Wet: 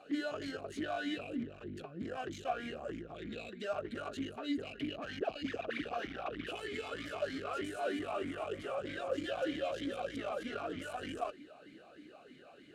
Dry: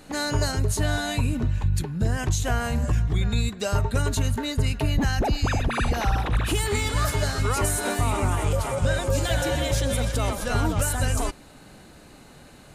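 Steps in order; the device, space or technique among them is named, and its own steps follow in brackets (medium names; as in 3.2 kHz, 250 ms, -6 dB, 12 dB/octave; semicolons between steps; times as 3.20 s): talk box (valve stage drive 29 dB, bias 0.4; talking filter a-i 3.2 Hz); trim +6.5 dB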